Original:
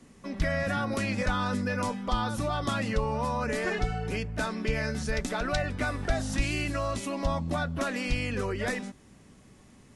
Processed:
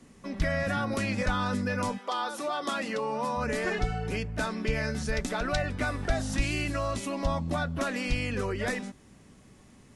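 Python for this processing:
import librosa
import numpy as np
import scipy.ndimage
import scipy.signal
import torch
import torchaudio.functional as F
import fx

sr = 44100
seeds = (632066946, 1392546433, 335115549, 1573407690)

y = fx.highpass(x, sr, hz=fx.line((1.97, 390.0), (3.36, 180.0)), slope=24, at=(1.97, 3.36), fade=0.02)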